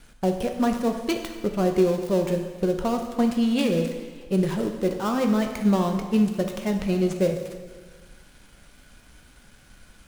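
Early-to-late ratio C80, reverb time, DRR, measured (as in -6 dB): 8.5 dB, 1.5 s, 4.0 dB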